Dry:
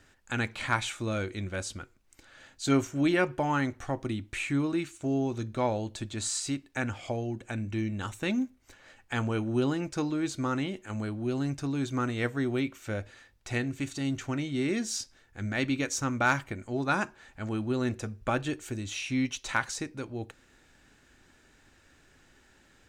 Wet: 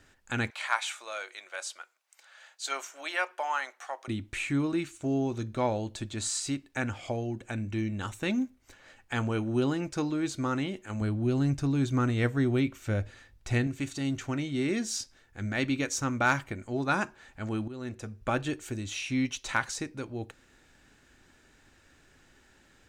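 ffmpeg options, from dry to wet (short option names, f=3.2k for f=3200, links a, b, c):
-filter_complex "[0:a]asettb=1/sr,asplit=3[a][b][c];[a]atrim=end=0.504[d];[b]atrim=start=0.5:end=4.08,asetpts=PTS-STARTPTS,afade=t=in:d=0.004:c=qsin,afade=t=out:st=3.576:d=0.004:c=qsin,highpass=f=650:w=0.5412,highpass=f=650:w=1.3066[e];[c]atrim=start=4.076[f];[d][e]acrossfade=d=0.004:c1=hsin:c2=qsin[g];[g][f]acrossfade=d=0.004:c1=qsin:c2=hsin,asettb=1/sr,asplit=3[h][i][j];[h]atrim=end=11.014[k];[i]atrim=start=11.01:end=13.67,asetpts=PTS-STARTPTS,afade=t=in:d=0.004:c=qsin,afade=t=out:st=2.656:d=0.004:c=qsin,lowshelf=f=170:g=10[l];[j]atrim=start=13.666[m];[k][l]acrossfade=d=0.004:c1=hsin:c2=qsin[n];[n][m]acrossfade=d=0.004:c1=qsin:c2=hsin,asplit=2[o][p];[o]atrim=end=17.68,asetpts=PTS-STARTPTS,afade=t=out:st=17.676:d=0.004:c=hsin:silence=0.177828[q];[p]atrim=start=17.68,asetpts=PTS-STARTPTS,afade=t=in:d=0.67:silence=0.177828[r];[q][r]concat=n=2:v=0:a=1"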